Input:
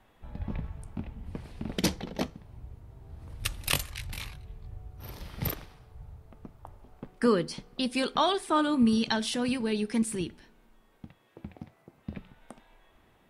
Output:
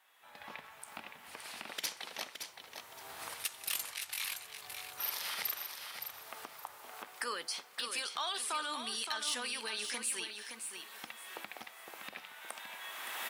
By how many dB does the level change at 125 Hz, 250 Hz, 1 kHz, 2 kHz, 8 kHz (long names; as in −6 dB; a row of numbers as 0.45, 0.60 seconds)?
below −30 dB, −26.5 dB, −8.0 dB, −2.0 dB, +1.0 dB